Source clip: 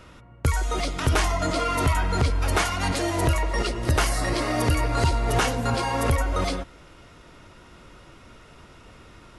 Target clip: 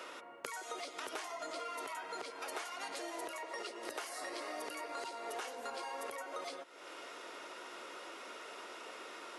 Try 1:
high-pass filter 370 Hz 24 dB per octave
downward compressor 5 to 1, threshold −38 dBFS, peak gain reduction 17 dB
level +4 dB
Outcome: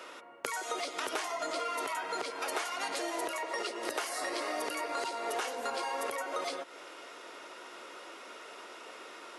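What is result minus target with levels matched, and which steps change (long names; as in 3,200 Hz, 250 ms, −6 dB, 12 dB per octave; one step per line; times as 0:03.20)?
downward compressor: peak gain reduction −7.5 dB
change: downward compressor 5 to 1, threshold −47.5 dBFS, peak gain reduction 24.5 dB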